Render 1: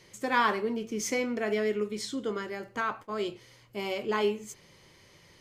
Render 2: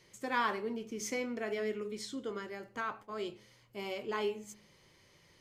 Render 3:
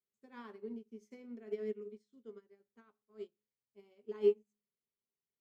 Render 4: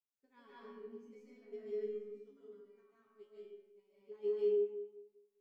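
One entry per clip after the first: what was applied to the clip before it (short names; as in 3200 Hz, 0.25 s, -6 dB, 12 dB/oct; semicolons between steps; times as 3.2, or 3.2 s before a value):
de-hum 105 Hz, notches 9; gain -6.5 dB
small resonant body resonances 230/410 Hz, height 15 dB, ringing for 70 ms; upward expander 2.5:1, over -40 dBFS; gain -6.5 dB
resonator 140 Hz, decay 0.37 s, harmonics all, mix 90%; digital reverb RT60 1.1 s, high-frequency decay 0.65×, pre-delay 0.11 s, DRR -8 dB; gain -1.5 dB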